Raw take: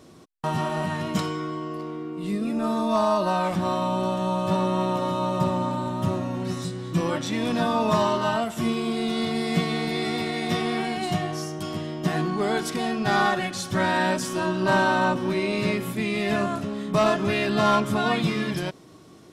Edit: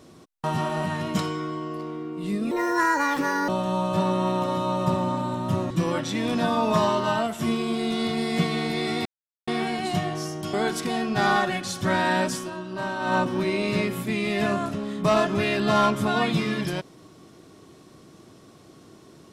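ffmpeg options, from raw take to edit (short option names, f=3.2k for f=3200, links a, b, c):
-filter_complex "[0:a]asplit=9[a][b][c][d][e][f][g][h][i];[a]atrim=end=2.514[j];[b]atrim=start=2.51:end=4.02,asetpts=PTS-STARTPTS,asetrate=68355,aresample=44100[k];[c]atrim=start=4.016:end=6.242[l];[d]atrim=start=6.878:end=10.23,asetpts=PTS-STARTPTS,afade=t=out:st=3.348:d=0.004:c=hsin[m];[e]atrim=start=10.23:end=10.65,asetpts=PTS-STARTPTS,volume=0[n];[f]atrim=start=10.65:end=11.712,asetpts=PTS-STARTPTS,afade=t=in:d=0.004:c=hsin[o];[g]atrim=start=12.428:end=14.4,asetpts=PTS-STARTPTS,afade=t=out:st=1.812:d=0.16:silence=0.334965[p];[h]atrim=start=14.4:end=14.89,asetpts=PTS-STARTPTS,volume=-9.5dB[q];[i]atrim=start=14.89,asetpts=PTS-STARTPTS,afade=t=in:d=0.16:silence=0.334965[r];[j][k]acrossfade=d=0.004:c1=hsin:c2=hsin[s];[s][l]acrossfade=d=0.004:c1=hsin:c2=hsin[t];[m][n][o]concat=n=3:v=0:a=1[u];[t][u]acrossfade=d=0.004:c1=hsin:c2=hsin[v];[p][q][r]concat=n=3:v=0:a=1[w];[v][w]acrossfade=d=0.004:c1=hsin:c2=hsin"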